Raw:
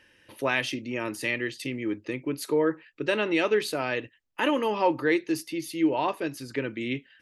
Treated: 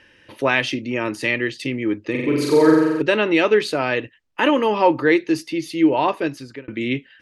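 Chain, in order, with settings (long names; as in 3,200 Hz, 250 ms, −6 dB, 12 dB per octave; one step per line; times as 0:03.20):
high-frequency loss of the air 61 metres
0:02.10–0:03.02: flutter between parallel walls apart 7.6 metres, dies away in 1.4 s
0:06.27–0:06.68: fade out
level +8 dB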